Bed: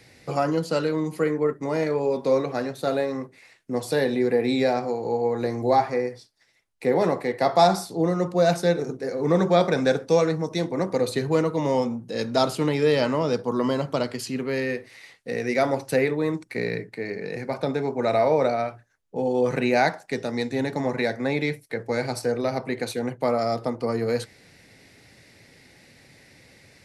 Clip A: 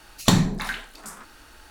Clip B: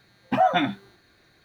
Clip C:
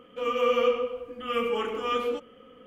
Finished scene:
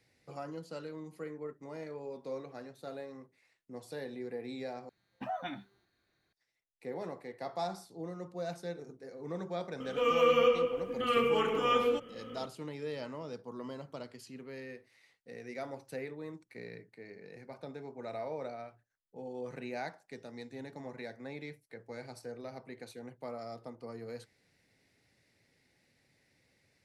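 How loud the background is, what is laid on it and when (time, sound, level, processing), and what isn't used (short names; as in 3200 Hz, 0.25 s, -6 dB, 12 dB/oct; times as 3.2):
bed -19 dB
4.89 replace with B -18 dB
9.8 add C -1 dB + three-band squash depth 40%
not used: A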